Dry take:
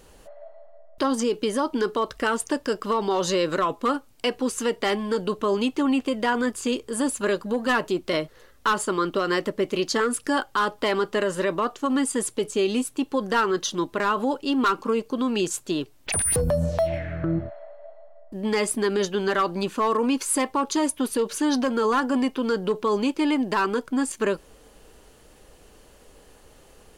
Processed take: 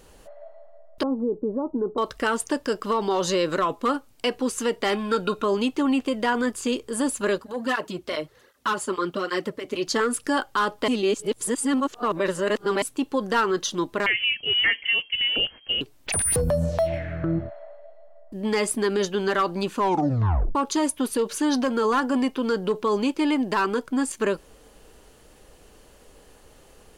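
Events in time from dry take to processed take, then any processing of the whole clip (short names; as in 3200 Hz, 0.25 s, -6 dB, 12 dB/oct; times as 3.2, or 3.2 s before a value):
1.03–1.98 Bessel low-pass 570 Hz, order 6
4.93–5.44 small resonant body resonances 1400/2500/3700 Hz, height 18 dB
7.38–9.87 tape flanging out of phase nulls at 1.3 Hz, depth 6.6 ms
10.88–12.82 reverse
14.06–15.81 inverted band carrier 3200 Hz
17.79–18.41 dynamic EQ 970 Hz, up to -6 dB, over -53 dBFS, Q 0.93
19.77 tape stop 0.78 s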